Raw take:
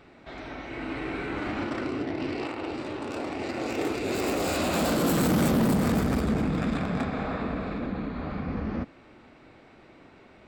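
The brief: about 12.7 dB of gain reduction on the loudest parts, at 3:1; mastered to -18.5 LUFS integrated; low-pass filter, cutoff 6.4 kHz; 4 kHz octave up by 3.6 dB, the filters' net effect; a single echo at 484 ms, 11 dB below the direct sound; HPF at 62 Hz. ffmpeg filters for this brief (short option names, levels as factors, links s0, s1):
-af "highpass=62,lowpass=6400,equalizer=f=4000:t=o:g=5,acompressor=threshold=0.0126:ratio=3,aecho=1:1:484:0.282,volume=9.44"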